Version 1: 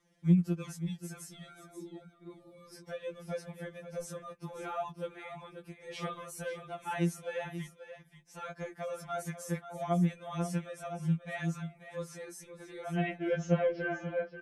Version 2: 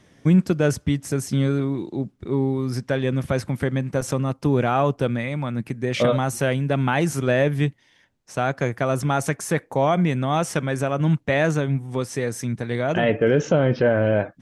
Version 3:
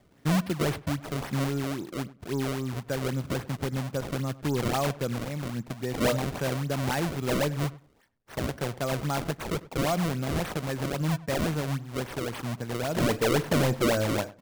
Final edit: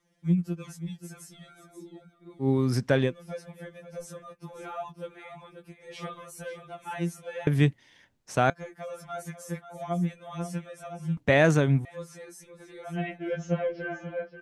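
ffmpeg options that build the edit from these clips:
ffmpeg -i take0.wav -i take1.wav -filter_complex "[1:a]asplit=3[link_01][link_02][link_03];[0:a]asplit=4[link_04][link_05][link_06][link_07];[link_04]atrim=end=2.49[link_08];[link_01]atrim=start=2.39:end=3.13[link_09];[link_05]atrim=start=3.03:end=7.472[link_10];[link_02]atrim=start=7.468:end=8.502[link_11];[link_06]atrim=start=8.498:end=11.172[link_12];[link_03]atrim=start=11.168:end=11.852[link_13];[link_07]atrim=start=11.848[link_14];[link_08][link_09]acrossfade=duration=0.1:curve1=tri:curve2=tri[link_15];[link_15][link_10]acrossfade=duration=0.1:curve1=tri:curve2=tri[link_16];[link_16][link_11]acrossfade=duration=0.004:curve1=hsin:curve2=hsin[link_17];[link_17][link_12]acrossfade=duration=0.004:curve1=hsin:curve2=hsin[link_18];[link_18][link_13]acrossfade=duration=0.004:curve1=hsin:curve2=hsin[link_19];[link_19][link_14]acrossfade=duration=0.004:curve1=hsin:curve2=hsin" out.wav

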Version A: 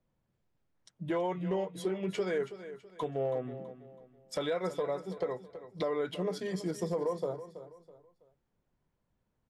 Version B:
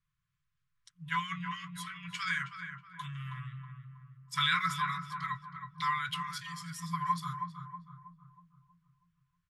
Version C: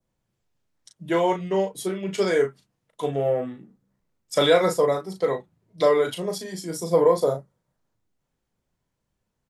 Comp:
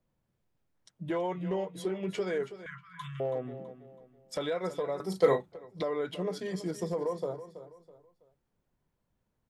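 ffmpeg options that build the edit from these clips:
ffmpeg -i take0.wav -i take1.wav -i take2.wav -filter_complex "[0:a]asplit=3[link_01][link_02][link_03];[link_01]atrim=end=2.662[link_04];[1:a]atrim=start=2.658:end=3.202[link_05];[link_02]atrim=start=3.198:end=5.002[link_06];[2:a]atrim=start=4.998:end=5.522[link_07];[link_03]atrim=start=5.518[link_08];[link_04][link_05]acrossfade=duration=0.004:curve1=hsin:curve2=hsin[link_09];[link_09][link_06]acrossfade=duration=0.004:curve1=hsin:curve2=hsin[link_10];[link_10][link_07]acrossfade=duration=0.004:curve1=hsin:curve2=hsin[link_11];[link_11][link_08]acrossfade=duration=0.004:curve1=hsin:curve2=hsin" out.wav

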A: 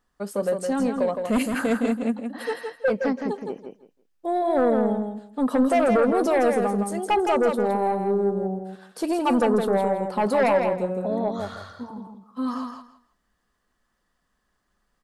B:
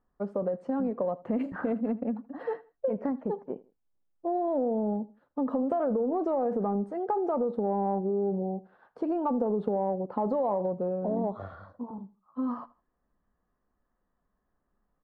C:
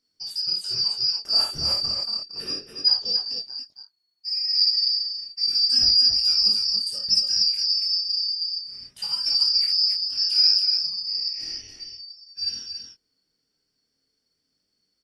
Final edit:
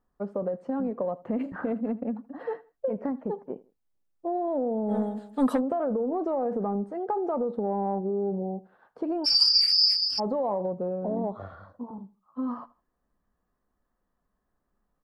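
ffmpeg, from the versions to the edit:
ffmpeg -i take0.wav -i take1.wav -i take2.wav -filter_complex "[1:a]asplit=3[link_01][link_02][link_03];[link_01]atrim=end=4.97,asetpts=PTS-STARTPTS[link_04];[0:a]atrim=start=4.87:end=5.62,asetpts=PTS-STARTPTS[link_05];[link_02]atrim=start=5.52:end=9.26,asetpts=PTS-STARTPTS[link_06];[2:a]atrim=start=9.24:end=10.2,asetpts=PTS-STARTPTS[link_07];[link_03]atrim=start=10.18,asetpts=PTS-STARTPTS[link_08];[link_04][link_05]acrossfade=duration=0.1:curve1=tri:curve2=tri[link_09];[link_09][link_06]acrossfade=duration=0.1:curve1=tri:curve2=tri[link_10];[link_10][link_07]acrossfade=duration=0.02:curve1=tri:curve2=tri[link_11];[link_11][link_08]acrossfade=duration=0.02:curve1=tri:curve2=tri" out.wav

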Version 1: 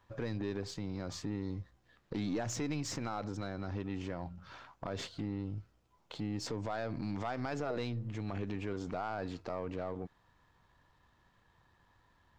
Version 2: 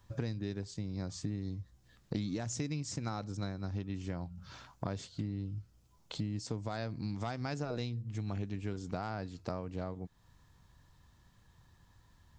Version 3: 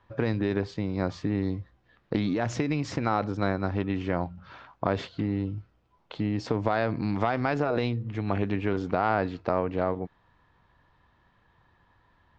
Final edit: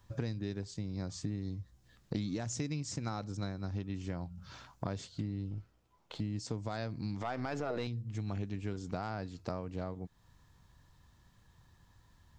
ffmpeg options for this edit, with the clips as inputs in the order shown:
ffmpeg -i take0.wav -i take1.wav -filter_complex "[0:a]asplit=2[link_01][link_02];[1:a]asplit=3[link_03][link_04][link_05];[link_03]atrim=end=5.512[link_06];[link_01]atrim=start=5.508:end=6.202[link_07];[link_04]atrim=start=6.198:end=7.212[link_08];[link_02]atrim=start=7.208:end=7.872[link_09];[link_05]atrim=start=7.868[link_10];[link_06][link_07]acrossfade=duration=0.004:curve1=hsin:curve2=hsin[link_11];[link_11][link_08]acrossfade=duration=0.004:curve1=hsin:curve2=hsin[link_12];[link_12][link_09]acrossfade=duration=0.004:curve1=hsin:curve2=hsin[link_13];[link_13][link_10]acrossfade=duration=0.004:curve1=hsin:curve2=hsin" out.wav

